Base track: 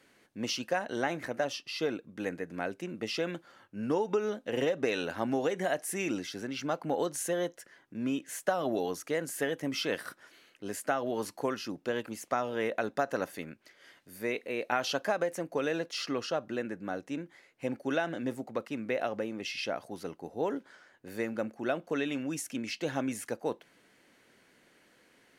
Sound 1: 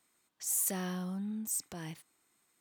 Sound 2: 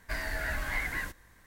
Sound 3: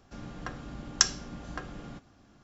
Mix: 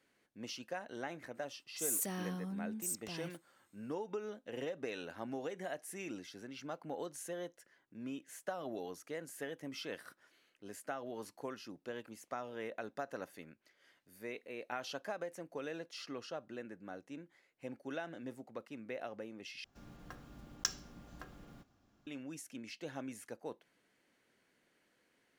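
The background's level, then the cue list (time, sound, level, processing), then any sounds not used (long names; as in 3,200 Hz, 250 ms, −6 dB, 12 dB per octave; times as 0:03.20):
base track −11.5 dB
0:01.35: mix in 1 −4 dB
0:19.64: overwrite with 3 −12.5 dB + one scale factor per block 5 bits
not used: 2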